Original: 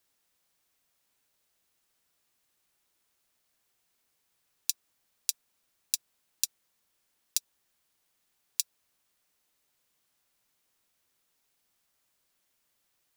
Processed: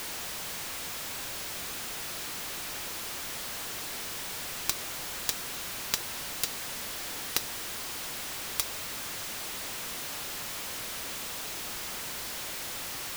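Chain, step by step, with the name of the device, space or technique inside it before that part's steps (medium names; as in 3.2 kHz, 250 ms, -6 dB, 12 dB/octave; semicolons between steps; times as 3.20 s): early CD player with a faulty converter (jump at every zero crossing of -29.5 dBFS; sampling jitter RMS 0.026 ms)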